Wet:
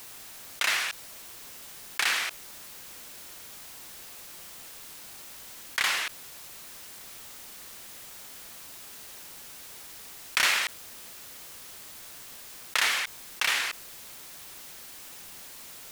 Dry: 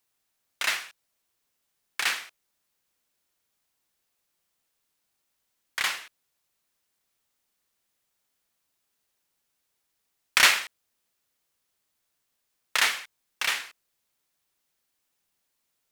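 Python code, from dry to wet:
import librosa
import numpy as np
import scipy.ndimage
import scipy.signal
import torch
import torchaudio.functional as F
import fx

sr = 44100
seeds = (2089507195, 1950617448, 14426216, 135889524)

y = fx.env_flatten(x, sr, amount_pct=70)
y = y * 10.0 ** (-7.5 / 20.0)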